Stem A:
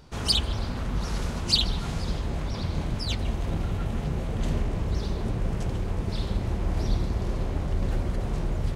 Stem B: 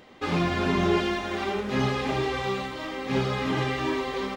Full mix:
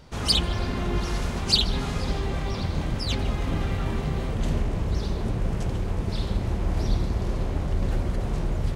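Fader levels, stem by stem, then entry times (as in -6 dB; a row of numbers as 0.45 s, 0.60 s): +1.5 dB, -9.0 dB; 0.00 s, 0.00 s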